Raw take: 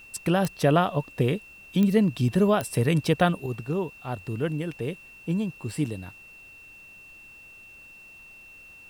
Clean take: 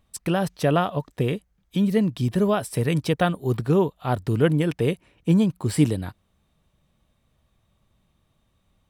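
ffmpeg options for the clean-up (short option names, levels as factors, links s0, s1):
-af "adeclick=t=4,bandreject=f=2700:w=30,agate=range=0.0891:threshold=0.00891,asetnsamples=n=441:p=0,asendcmd='3.46 volume volume 8.5dB',volume=1"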